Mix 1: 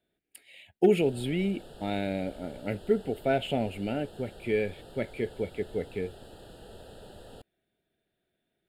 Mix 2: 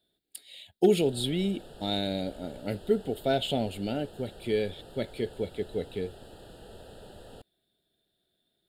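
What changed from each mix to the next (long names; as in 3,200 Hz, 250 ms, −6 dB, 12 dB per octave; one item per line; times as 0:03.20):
speech: add high shelf with overshoot 3,000 Hz +7 dB, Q 3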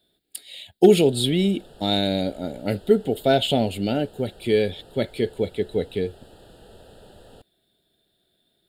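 speech +8.0 dB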